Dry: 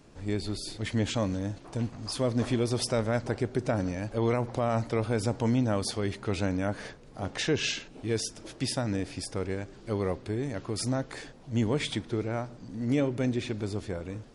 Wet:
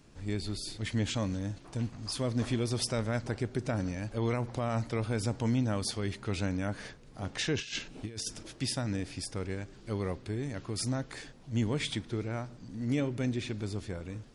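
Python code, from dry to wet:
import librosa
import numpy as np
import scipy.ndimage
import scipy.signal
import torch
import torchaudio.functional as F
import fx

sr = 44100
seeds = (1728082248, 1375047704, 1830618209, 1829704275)

y = fx.peak_eq(x, sr, hz=580.0, db=-5.5, octaves=2.2)
y = fx.over_compress(y, sr, threshold_db=-36.0, ratio=-0.5, at=(7.56, 8.43))
y = y * librosa.db_to_amplitude(-1.0)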